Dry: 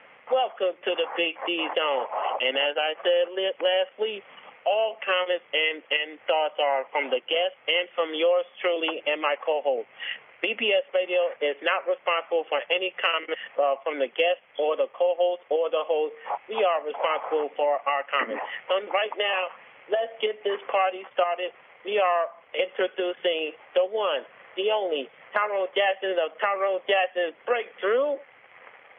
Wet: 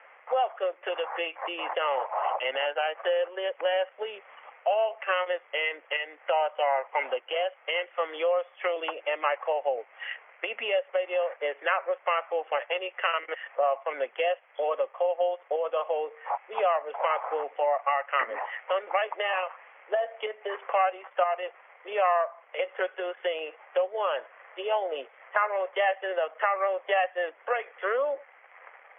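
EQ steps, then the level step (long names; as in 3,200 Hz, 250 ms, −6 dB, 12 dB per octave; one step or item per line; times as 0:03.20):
flat-topped band-pass 1,100 Hz, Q 0.69
0.0 dB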